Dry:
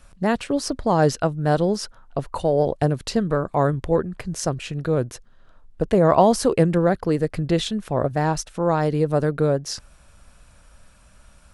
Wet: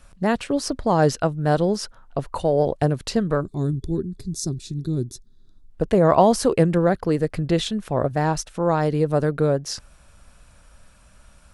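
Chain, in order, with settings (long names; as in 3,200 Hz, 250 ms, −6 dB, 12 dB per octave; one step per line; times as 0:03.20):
gain on a spectral selection 0:03.41–0:05.70, 420–3,400 Hz −20 dB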